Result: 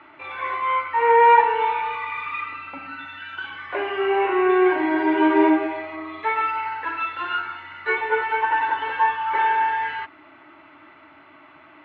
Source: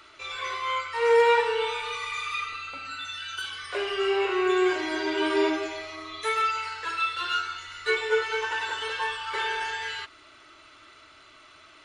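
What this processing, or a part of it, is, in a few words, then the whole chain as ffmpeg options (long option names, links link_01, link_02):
bass cabinet: -af "highpass=72,highpass=88,equalizer=frequency=110:width_type=q:width=4:gain=-4,equalizer=frequency=160:width_type=q:width=4:gain=5,equalizer=frequency=290:width_type=q:width=4:gain=8,equalizer=frequency=440:width_type=q:width=4:gain=-8,equalizer=frequency=870:width_type=q:width=4:gain=8,equalizer=frequency=1300:width_type=q:width=4:gain=-6,lowpass=frequency=2200:width=0.5412,lowpass=frequency=2200:width=1.3066,volume=6.5dB"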